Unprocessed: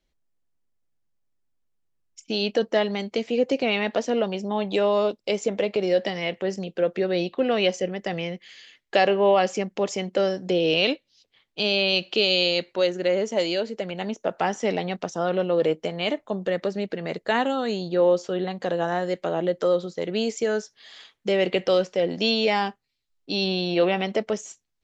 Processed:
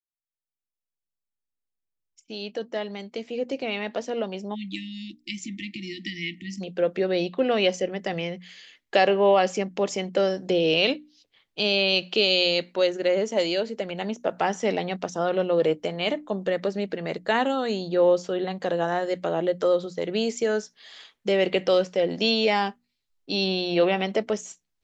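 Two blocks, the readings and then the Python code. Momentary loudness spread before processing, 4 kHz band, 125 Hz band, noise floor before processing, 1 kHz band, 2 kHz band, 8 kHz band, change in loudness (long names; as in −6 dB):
9 LU, −0.5 dB, −1.5 dB, −75 dBFS, −0.5 dB, −0.5 dB, can't be measured, −0.5 dB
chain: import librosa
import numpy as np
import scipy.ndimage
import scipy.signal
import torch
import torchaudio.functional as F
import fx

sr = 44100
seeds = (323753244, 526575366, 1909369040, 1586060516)

y = fx.fade_in_head(x, sr, length_s=7.16)
y = fx.spec_erase(y, sr, start_s=4.55, length_s=2.06, low_hz=360.0, high_hz=1800.0)
y = fx.hum_notches(y, sr, base_hz=60, count=5)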